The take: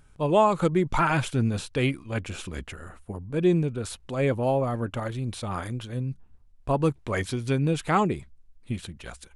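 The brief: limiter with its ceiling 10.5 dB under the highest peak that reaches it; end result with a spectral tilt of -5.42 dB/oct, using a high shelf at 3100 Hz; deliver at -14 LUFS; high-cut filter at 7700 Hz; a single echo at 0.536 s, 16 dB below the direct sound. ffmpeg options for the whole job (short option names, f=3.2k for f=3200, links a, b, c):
-af "lowpass=7.7k,highshelf=f=3.1k:g=8.5,alimiter=limit=-19dB:level=0:latency=1,aecho=1:1:536:0.158,volume=16dB"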